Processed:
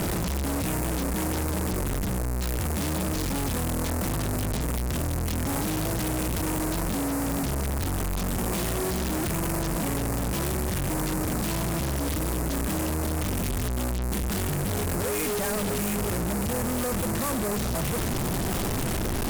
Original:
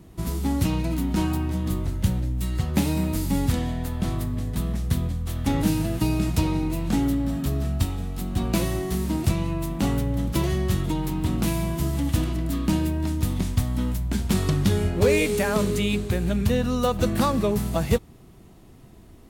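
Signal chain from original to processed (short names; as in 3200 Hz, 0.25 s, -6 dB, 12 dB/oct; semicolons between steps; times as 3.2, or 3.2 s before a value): infinite clipping; ladder low-pass 7100 Hz, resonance 35%; wrapped overs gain 28 dB; gain +4.5 dB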